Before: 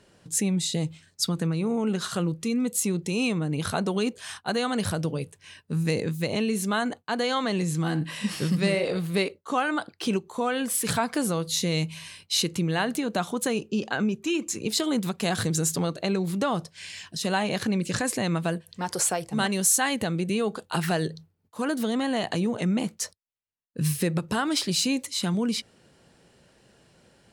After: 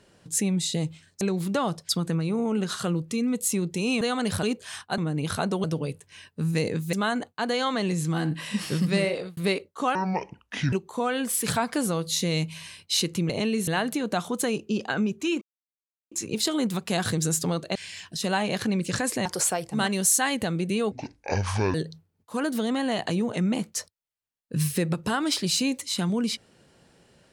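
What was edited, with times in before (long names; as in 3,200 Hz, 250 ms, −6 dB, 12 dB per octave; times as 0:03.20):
0:03.33–0:03.99: swap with 0:04.54–0:04.96
0:06.25–0:06.63: move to 0:12.70
0:08.76–0:09.07: fade out
0:09.65–0:10.13: play speed 62%
0:14.44: splice in silence 0.70 s
0:16.08–0:16.76: move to 0:01.21
0:18.26–0:18.85: remove
0:20.51–0:20.99: play speed 58%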